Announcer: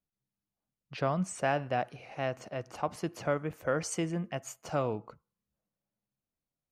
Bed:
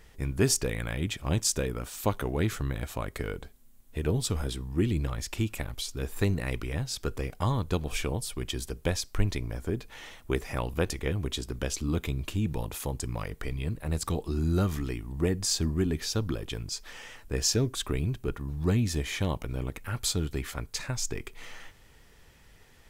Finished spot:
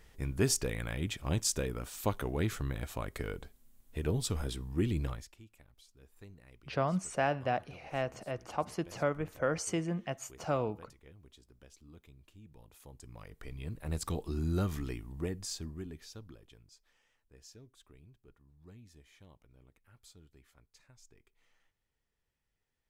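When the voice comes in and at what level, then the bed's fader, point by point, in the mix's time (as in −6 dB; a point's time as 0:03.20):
5.75 s, −1.0 dB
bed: 0:05.11 −4.5 dB
0:05.38 −26.5 dB
0:12.44 −26.5 dB
0:13.91 −5.5 dB
0:14.91 −5.5 dB
0:17.03 −29 dB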